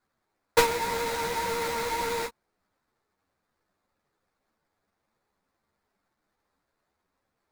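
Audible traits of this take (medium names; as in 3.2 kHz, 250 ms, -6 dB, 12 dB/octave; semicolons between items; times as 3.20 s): aliases and images of a low sample rate 3 kHz, jitter 20%; a shimmering, thickened sound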